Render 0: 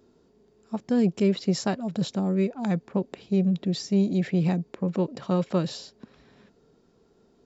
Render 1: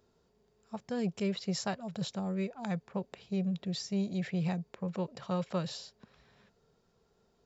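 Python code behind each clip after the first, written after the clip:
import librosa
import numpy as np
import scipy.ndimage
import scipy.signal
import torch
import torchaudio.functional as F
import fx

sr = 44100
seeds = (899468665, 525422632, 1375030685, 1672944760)

y = fx.peak_eq(x, sr, hz=290.0, db=-13.0, octaves=0.93)
y = y * librosa.db_to_amplitude(-4.5)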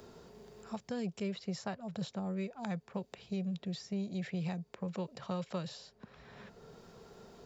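y = fx.band_squash(x, sr, depth_pct=70)
y = y * librosa.db_to_amplitude(-4.0)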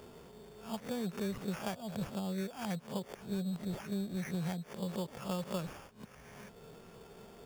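y = fx.spec_swells(x, sr, rise_s=0.31)
y = fx.sample_hold(y, sr, seeds[0], rate_hz=4000.0, jitter_pct=0)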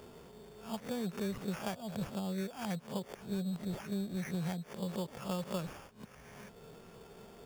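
y = x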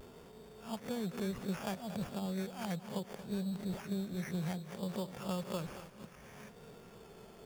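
y = fx.vibrato(x, sr, rate_hz=0.65, depth_cents=37.0)
y = fx.echo_feedback(y, sr, ms=230, feedback_pct=51, wet_db=-13.5)
y = y * librosa.db_to_amplitude(-1.0)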